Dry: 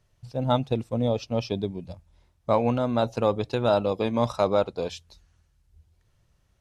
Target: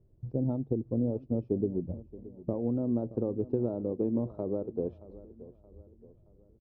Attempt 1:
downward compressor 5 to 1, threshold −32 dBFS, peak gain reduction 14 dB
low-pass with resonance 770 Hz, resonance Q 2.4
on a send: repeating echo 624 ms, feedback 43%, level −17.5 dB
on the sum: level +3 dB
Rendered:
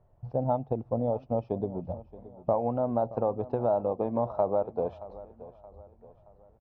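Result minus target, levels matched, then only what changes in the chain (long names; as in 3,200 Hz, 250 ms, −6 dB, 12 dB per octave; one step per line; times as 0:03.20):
1,000 Hz band +16.5 dB
change: low-pass with resonance 350 Hz, resonance Q 2.4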